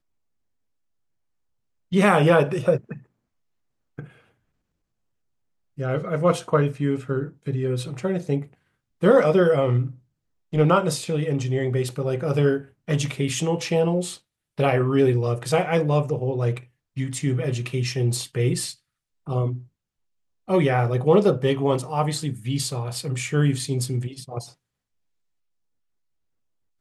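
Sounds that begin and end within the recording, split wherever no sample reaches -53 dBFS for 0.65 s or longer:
1.92–3.06 s
3.98–4.29 s
5.77–19.68 s
20.48–24.54 s

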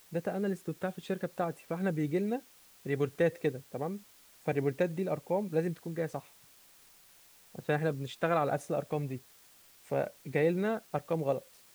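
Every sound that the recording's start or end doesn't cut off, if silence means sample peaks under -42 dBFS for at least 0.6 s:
7.55–9.18 s

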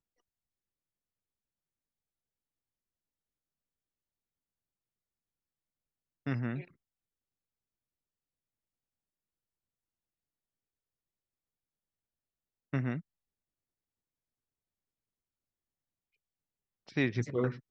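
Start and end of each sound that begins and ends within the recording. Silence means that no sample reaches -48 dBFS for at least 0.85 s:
6.26–6.64 s
12.73–13.01 s

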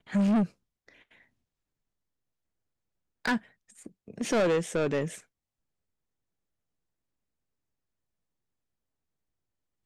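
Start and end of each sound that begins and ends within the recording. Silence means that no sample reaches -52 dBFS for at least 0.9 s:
3.25–5.23 s

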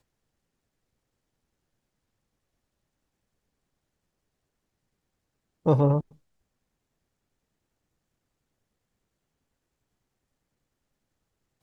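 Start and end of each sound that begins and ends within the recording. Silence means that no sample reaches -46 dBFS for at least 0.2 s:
5.66–6.12 s

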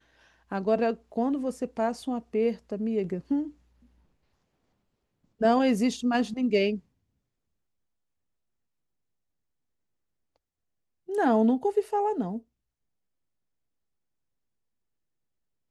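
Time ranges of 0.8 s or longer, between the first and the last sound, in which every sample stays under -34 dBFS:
3.48–5.41 s
6.77–11.09 s

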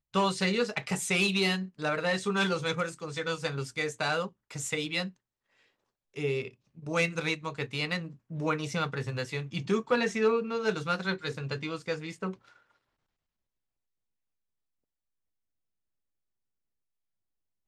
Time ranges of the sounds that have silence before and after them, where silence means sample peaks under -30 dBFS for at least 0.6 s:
6.18–12.31 s

